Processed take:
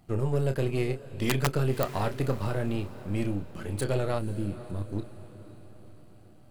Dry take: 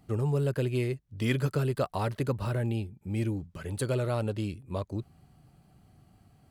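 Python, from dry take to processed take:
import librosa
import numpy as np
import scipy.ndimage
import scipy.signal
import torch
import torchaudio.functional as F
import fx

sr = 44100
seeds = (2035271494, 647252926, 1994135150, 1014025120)

p1 = np.where(x < 0.0, 10.0 ** (-7.0 / 20.0) * x, x)
p2 = fx.doubler(p1, sr, ms=30.0, db=-8.5)
p3 = fx.spec_box(p2, sr, start_s=4.18, length_s=0.74, low_hz=370.0, high_hz=8200.0, gain_db=-12)
p4 = (np.mod(10.0 ** (17.5 / 20.0) * p3 + 1.0, 2.0) - 1.0) / 10.0 ** (17.5 / 20.0)
p5 = p4 + fx.echo_diffused(p4, sr, ms=522, feedback_pct=50, wet_db=-15, dry=0)
y = p5 * 10.0 ** (2.5 / 20.0)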